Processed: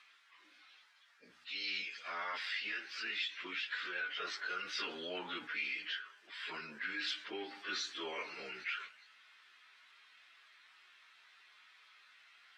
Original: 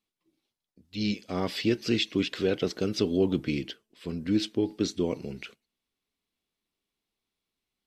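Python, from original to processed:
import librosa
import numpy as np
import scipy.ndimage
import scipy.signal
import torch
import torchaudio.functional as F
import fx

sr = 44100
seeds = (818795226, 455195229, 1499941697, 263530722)

y = fx.ladder_bandpass(x, sr, hz=1800.0, resonance_pct=50)
y = fx.pitch_keep_formants(y, sr, semitones=-1.0)
y = fx.rider(y, sr, range_db=4, speed_s=0.5)
y = fx.stretch_vocoder_free(y, sr, factor=1.6)
y = fx.env_flatten(y, sr, amount_pct=50)
y = y * librosa.db_to_amplitude(10.5)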